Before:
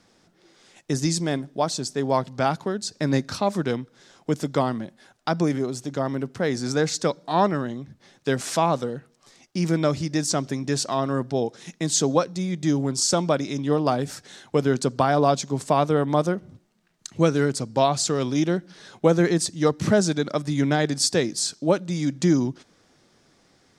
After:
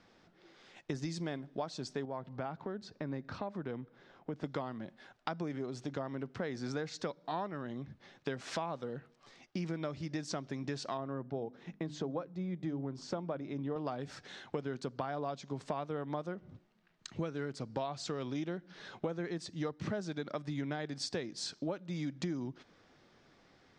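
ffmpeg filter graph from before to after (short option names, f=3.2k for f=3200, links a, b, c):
-filter_complex "[0:a]asettb=1/sr,asplit=3[a][b][c];[a]atrim=end=2.054[d];[b]atrim=start=2.05:end=4.44,asetpts=PTS-STARTPTS,afade=t=in:d=0.004:c=qsin,afade=t=out:st=2.386:d=0.004:c=qsin,lowpass=f=1.4k:p=1,acompressor=threshold=-40dB:ratio=1.5:attack=3.2:release=140:knee=1:detection=peak[e];[c]atrim=start=4.436[f];[d][e]acrossfade=d=0.004:c1=hsin:c2=qsin[g];[g][f]acrossfade=d=0.004:c1=qsin:c2=hsin,asettb=1/sr,asplit=3[h][i][j];[h]atrim=end=10.974[k];[i]atrim=start=10.97:end=13.76,asetpts=PTS-STARTPTS,afade=t=in:d=0.004:c=qsin,afade=t=out:st=2.786:d=0.004:c=qsin,lowpass=f=1k:p=1,bandreject=f=50:t=h:w=6,bandreject=f=100:t=h:w=6,bandreject=f=150:t=h:w=6,bandreject=f=200:t=h:w=6,bandreject=f=250:t=h:w=6,bandreject=f=300:t=h:w=6[l];[j]atrim=start=13.756[m];[k][l]acrossfade=d=0.004:c1=hsin:c2=qsin[n];[n][m]acrossfade=d=0.004:c1=qsin:c2=hsin,lowpass=3.6k,equalizer=f=180:w=0.36:g=-3,acompressor=threshold=-33dB:ratio=6,volume=-2dB"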